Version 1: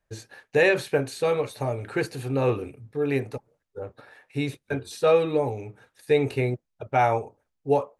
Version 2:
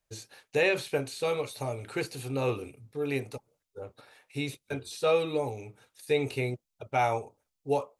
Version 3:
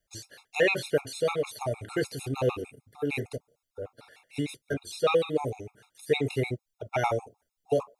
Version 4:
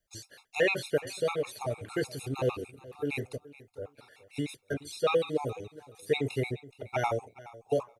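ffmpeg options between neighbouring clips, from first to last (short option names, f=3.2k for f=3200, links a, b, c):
-filter_complex "[0:a]equalizer=f=1.7k:t=o:w=0.32:g=-7.5,acrossover=split=3700[a][b];[b]acompressor=threshold=-45dB:ratio=4:attack=1:release=60[c];[a][c]amix=inputs=2:normalize=0,highshelf=f=2.3k:g=11.5,volume=-6.5dB"
-af "afftfilt=real='re*gt(sin(2*PI*6.6*pts/sr)*(1-2*mod(floor(b*sr/1024/700),2)),0)':imag='im*gt(sin(2*PI*6.6*pts/sr)*(1-2*mod(floor(b*sr/1024/700),2)),0)':win_size=1024:overlap=0.75,volume=4.5dB"
-af "aecho=1:1:423|846:0.112|0.0202,volume=-2.5dB"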